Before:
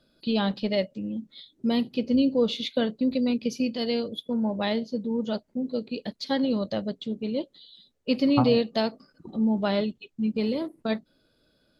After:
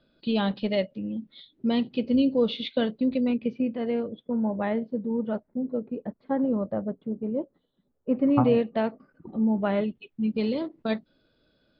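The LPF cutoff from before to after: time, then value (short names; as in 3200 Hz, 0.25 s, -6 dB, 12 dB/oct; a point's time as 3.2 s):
LPF 24 dB/oct
2.98 s 3800 Hz
3.66 s 2000 Hz
5.27 s 2000 Hz
5.98 s 1400 Hz
8.09 s 1400 Hz
8.49 s 2400 Hz
9.73 s 2400 Hz
10.4 s 4300 Hz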